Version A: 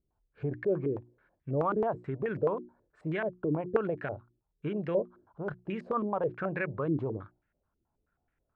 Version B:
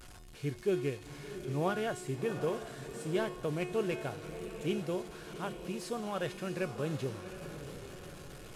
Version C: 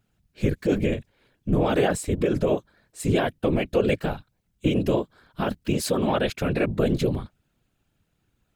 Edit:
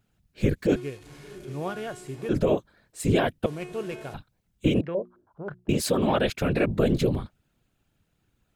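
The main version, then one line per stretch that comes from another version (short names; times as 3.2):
C
0.76–2.29 from B
3.46–4.14 from B
4.81–5.69 from A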